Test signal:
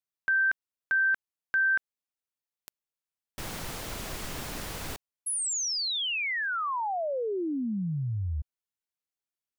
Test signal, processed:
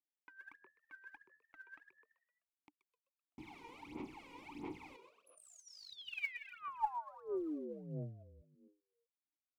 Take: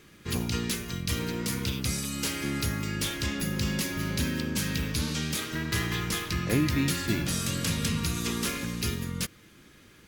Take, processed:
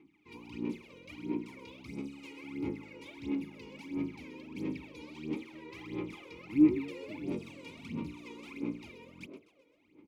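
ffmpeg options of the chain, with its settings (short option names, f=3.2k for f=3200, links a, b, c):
-filter_complex "[0:a]asplit=3[a][b][c];[a]bandpass=f=300:t=q:w=8,volume=0dB[d];[b]bandpass=f=870:t=q:w=8,volume=-6dB[e];[c]bandpass=f=2.24k:t=q:w=8,volume=-9dB[f];[d][e][f]amix=inputs=3:normalize=0,asplit=6[g][h][i][j][k][l];[h]adelay=128,afreqshift=78,volume=-10dB[m];[i]adelay=256,afreqshift=156,volume=-16.4dB[n];[j]adelay=384,afreqshift=234,volume=-22.8dB[o];[k]adelay=512,afreqshift=312,volume=-29.1dB[p];[l]adelay=640,afreqshift=390,volume=-35.5dB[q];[g][m][n][o][p][q]amix=inputs=6:normalize=0,aphaser=in_gain=1:out_gain=1:delay=2.1:decay=0.78:speed=1.5:type=sinusoidal,volume=-4dB"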